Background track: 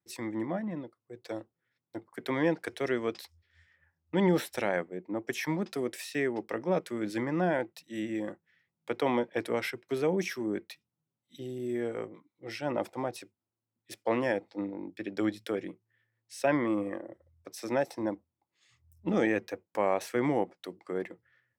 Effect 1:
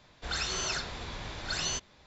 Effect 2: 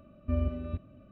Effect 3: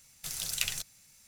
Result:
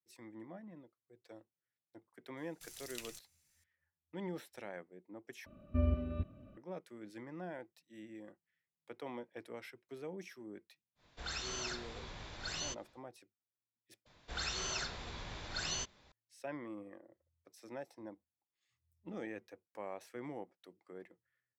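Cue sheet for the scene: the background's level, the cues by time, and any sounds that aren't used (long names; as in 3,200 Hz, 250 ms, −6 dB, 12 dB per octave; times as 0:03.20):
background track −17 dB
0:02.37: mix in 3 −16 dB
0:05.46: overwrite with 2 −2.5 dB
0:10.95: mix in 1 −8.5 dB, fades 0.10 s
0:14.06: overwrite with 1 −6 dB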